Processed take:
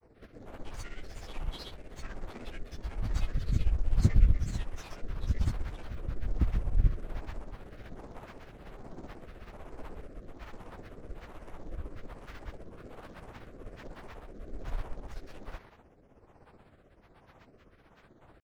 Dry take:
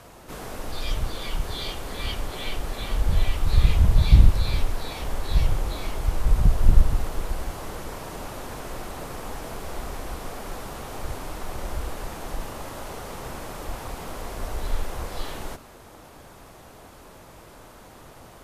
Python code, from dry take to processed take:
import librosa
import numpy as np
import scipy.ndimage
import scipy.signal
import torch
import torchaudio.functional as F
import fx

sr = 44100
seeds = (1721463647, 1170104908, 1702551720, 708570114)

y = fx.wiener(x, sr, points=9)
y = fx.granulator(y, sr, seeds[0], grain_ms=100.0, per_s=16.0, spray_ms=100.0, spread_st=12)
y = fx.rotary(y, sr, hz=1.2)
y = y * librosa.db_to_amplitude(-7.0)